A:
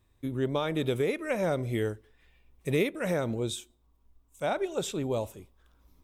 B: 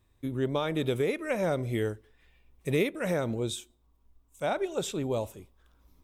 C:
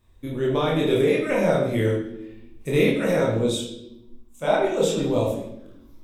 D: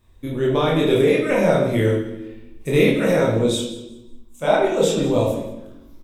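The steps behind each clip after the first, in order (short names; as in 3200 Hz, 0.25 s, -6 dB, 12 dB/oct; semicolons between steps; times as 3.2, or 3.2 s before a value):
nothing audible
chorus voices 6, 0.9 Hz, delay 27 ms, depth 2.7 ms; reverb RT60 0.85 s, pre-delay 13 ms, DRR -0.5 dB; gain +7 dB
feedback echo 0.184 s, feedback 27%, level -17 dB; gain +3.5 dB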